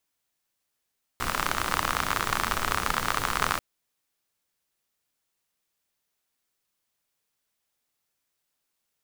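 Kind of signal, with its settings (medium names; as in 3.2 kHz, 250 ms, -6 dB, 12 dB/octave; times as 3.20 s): rain from filtered ticks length 2.39 s, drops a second 54, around 1.2 kHz, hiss -4 dB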